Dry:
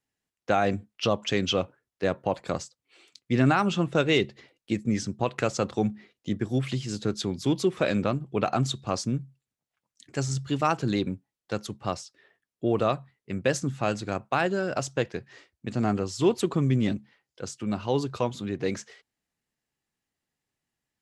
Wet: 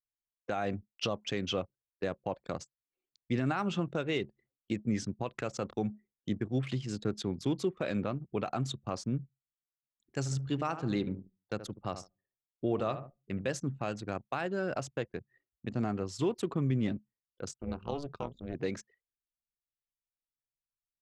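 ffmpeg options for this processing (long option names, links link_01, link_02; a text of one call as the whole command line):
ffmpeg -i in.wav -filter_complex "[0:a]asplit=3[link_01][link_02][link_03];[link_01]afade=type=out:start_time=10.25:duration=0.02[link_04];[link_02]asplit=2[link_05][link_06];[link_06]adelay=74,lowpass=frequency=2200:poles=1,volume=-11dB,asplit=2[link_07][link_08];[link_08]adelay=74,lowpass=frequency=2200:poles=1,volume=0.4,asplit=2[link_09][link_10];[link_10]adelay=74,lowpass=frequency=2200:poles=1,volume=0.4,asplit=2[link_11][link_12];[link_12]adelay=74,lowpass=frequency=2200:poles=1,volume=0.4[link_13];[link_05][link_07][link_09][link_11][link_13]amix=inputs=5:normalize=0,afade=type=in:start_time=10.25:duration=0.02,afade=type=out:start_time=13.5:duration=0.02[link_14];[link_03]afade=type=in:start_time=13.5:duration=0.02[link_15];[link_04][link_14][link_15]amix=inputs=3:normalize=0,asettb=1/sr,asplit=3[link_16][link_17][link_18];[link_16]atrim=end=17.544[link_19];[link_17]atrim=start=17.54:end=18.55,asetpts=PTS-STARTPTS,afade=type=in:duration=0.004:curve=qsin,afade=type=out:start_time=1.006:duration=0.004:curve=qsin,tremolo=f=290:d=0.947[link_20];[link_18]atrim=start=18.546[link_21];[link_19][link_20]acrossfade=duration=0.004:curve1=hsin:curve2=qsin[link_22];[link_22][link_21]acrossfade=duration=0.004:curve1=qsin:curve2=hsin,anlmdn=0.631,alimiter=limit=-17dB:level=0:latency=1:release=268,adynamicequalizer=threshold=0.00447:dfrequency=3000:dqfactor=0.7:tfrequency=3000:tqfactor=0.7:attack=5:release=100:ratio=0.375:range=3:mode=cutabove:tftype=highshelf,volume=-4dB" out.wav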